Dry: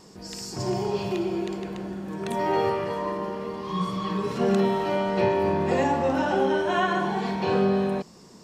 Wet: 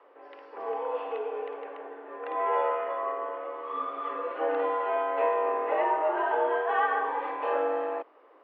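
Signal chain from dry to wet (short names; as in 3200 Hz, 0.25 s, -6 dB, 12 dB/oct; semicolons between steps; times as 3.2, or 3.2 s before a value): mistuned SSB +87 Hz 250–3100 Hz; three-band isolator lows -14 dB, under 490 Hz, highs -15 dB, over 2100 Hz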